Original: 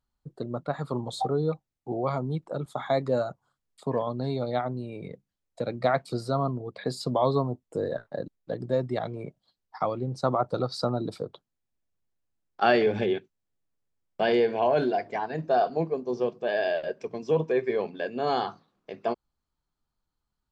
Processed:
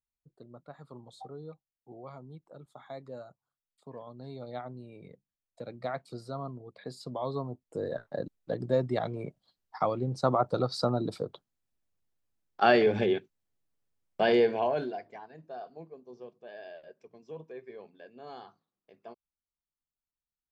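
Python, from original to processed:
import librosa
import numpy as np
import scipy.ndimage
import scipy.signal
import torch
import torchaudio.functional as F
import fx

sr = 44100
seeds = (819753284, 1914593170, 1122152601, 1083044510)

y = fx.gain(x, sr, db=fx.line((3.93, -17.5), (4.57, -11.0), (7.18, -11.0), (8.26, -0.5), (14.47, -0.5), (14.92, -10.5), (15.37, -19.0)))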